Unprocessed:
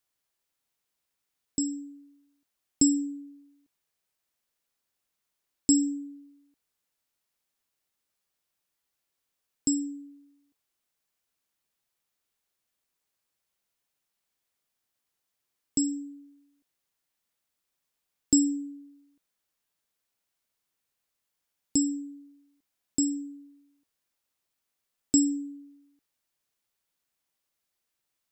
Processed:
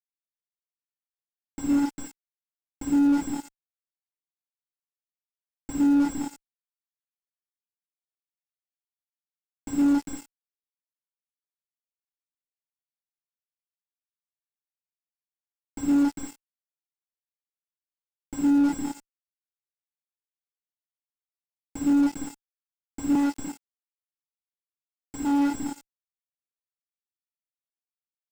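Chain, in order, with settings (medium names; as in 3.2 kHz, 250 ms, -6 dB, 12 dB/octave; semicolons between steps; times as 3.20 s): companding laws mixed up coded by A; doubling 12 ms -3 dB; delay 400 ms -14.5 dB; reverberation RT60 1.0 s, pre-delay 59 ms, DRR 4 dB; fuzz box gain 43 dB, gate -44 dBFS; 23.15–25.60 s: high-pass 230 Hz 12 dB/octave; slew-rate limiter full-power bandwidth 68 Hz; trim -3 dB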